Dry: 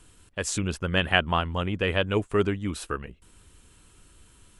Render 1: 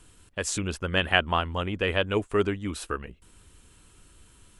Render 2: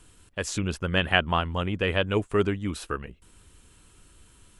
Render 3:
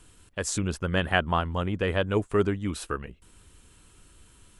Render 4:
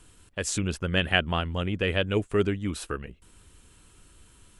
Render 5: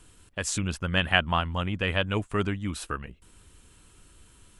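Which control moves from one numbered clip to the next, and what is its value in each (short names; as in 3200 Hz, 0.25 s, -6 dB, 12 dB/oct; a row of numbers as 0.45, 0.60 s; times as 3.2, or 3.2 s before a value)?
dynamic EQ, frequency: 140, 8600, 2700, 1000, 410 Hz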